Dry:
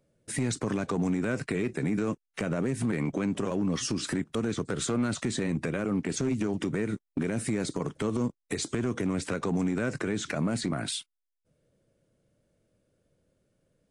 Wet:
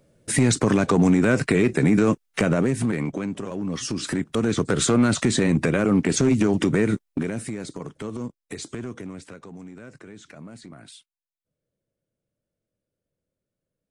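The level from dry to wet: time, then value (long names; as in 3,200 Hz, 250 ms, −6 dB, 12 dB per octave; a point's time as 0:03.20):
0:02.41 +10.5 dB
0:03.46 −2 dB
0:04.68 +9.5 dB
0:06.91 +9.5 dB
0:07.56 −3 dB
0:08.79 −3 dB
0:09.50 −13 dB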